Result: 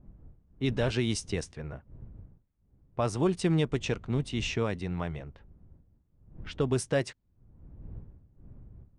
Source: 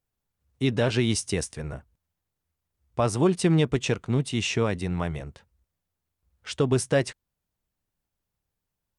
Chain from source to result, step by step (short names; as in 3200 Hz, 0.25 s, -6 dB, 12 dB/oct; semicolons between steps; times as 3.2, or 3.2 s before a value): wind noise 100 Hz -43 dBFS; low-pass opened by the level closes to 2100 Hz, open at -17 dBFS; gain -5 dB